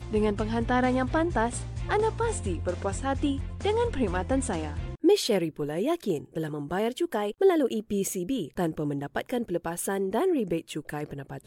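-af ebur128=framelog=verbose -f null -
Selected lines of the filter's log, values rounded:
Integrated loudness:
  I:         -28.2 LUFS
  Threshold: -38.2 LUFS
Loudness range:
  LRA:         2.0 LU
  Threshold: -48.2 LUFS
  LRA low:   -29.2 LUFS
  LRA high:  -27.2 LUFS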